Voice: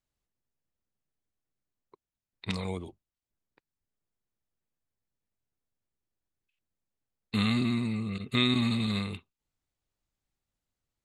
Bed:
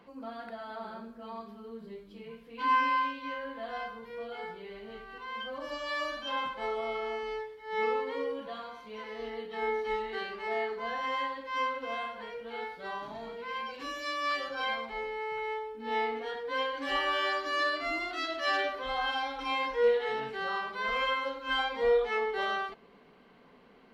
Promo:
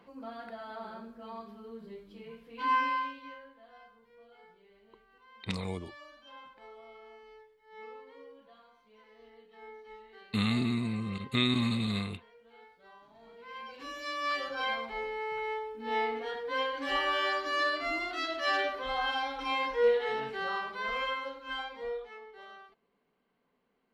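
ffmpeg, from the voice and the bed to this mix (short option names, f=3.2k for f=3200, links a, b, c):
-filter_complex "[0:a]adelay=3000,volume=-2dB[a];[1:a]volume=16dB,afade=t=out:st=2.77:d=0.77:silence=0.158489,afade=t=in:st=13.13:d=1.31:silence=0.133352,afade=t=out:st=20.39:d=1.8:silence=0.11885[b];[a][b]amix=inputs=2:normalize=0"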